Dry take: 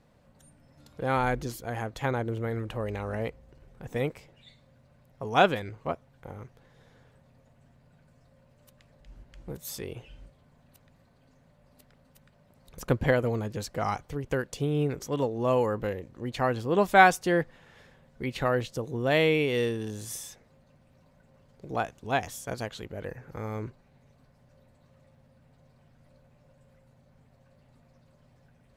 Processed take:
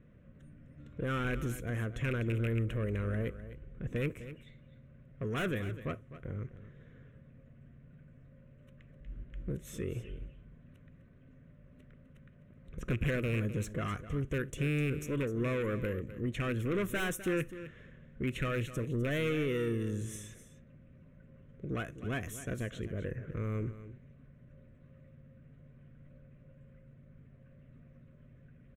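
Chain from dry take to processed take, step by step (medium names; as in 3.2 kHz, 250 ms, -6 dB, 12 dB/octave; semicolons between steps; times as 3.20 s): rattle on loud lows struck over -27 dBFS, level -21 dBFS; level-controlled noise filter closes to 2.9 kHz, open at -26.5 dBFS; dynamic bell 1.3 kHz, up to +5 dB, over -40 dBFS, Q 1.3; in parallel at -0.5 dB: compression, threshold -33 dBFS, peak gain reduction 22 dB; on the sum: peaking EQ 2.1 kHz -6 dB 2.9 oct; saturation -25.5 dBFS, distortion -7 dB; static phaser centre 2 kHz, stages 4; delay 254 ms -13.5 dB; on a send at -20 dB: reverberation, pre-delay 3 ms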